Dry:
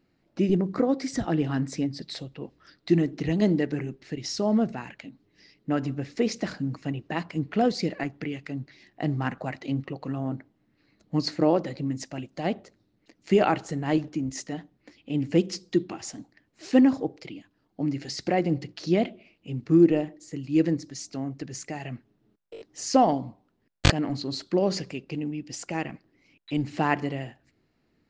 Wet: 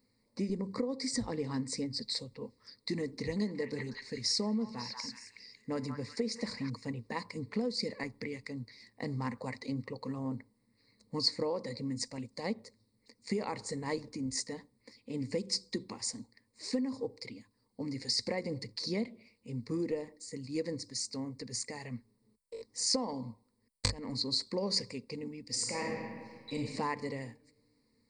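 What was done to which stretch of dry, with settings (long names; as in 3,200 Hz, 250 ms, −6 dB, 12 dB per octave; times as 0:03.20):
0:03.18–0:06.70: echo through a band-pass that steps 183 ms, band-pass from 1,300 Hz, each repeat 0.7 octaves, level −2 dB
0:25.46–0:26.57: thrown reverb, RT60 1.7 s, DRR −1.5 dB
whole clip: EQ curve with evenly spaced ripples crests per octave 0.94, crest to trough 15 dB; downward compressor 12 to 1, threshold −22 dBFS; high shelf with overshoot 4,400 Hz +11 dB, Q 1.5; level −7.5 dB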